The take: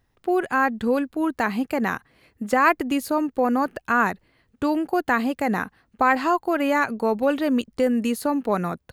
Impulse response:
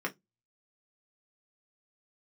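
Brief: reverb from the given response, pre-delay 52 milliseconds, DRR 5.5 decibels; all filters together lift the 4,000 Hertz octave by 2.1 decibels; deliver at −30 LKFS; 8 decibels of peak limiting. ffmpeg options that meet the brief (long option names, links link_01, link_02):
-filter_complex "[0:a]equalizer=frequency=4000:width_type=o:gain=3,alimiter=limit=-12.5dB:level=0:latency=1,asplit=2[link_01][link_02];[1:a]atrim=start_sample=2205,adelay=52[link_03];[link_02][link_03]afir=irnorm=-1:irlink=0,volume=-11dB[link_04];[link_01][link_04]amix=inputs=2:normalize=0,volume=-7dB"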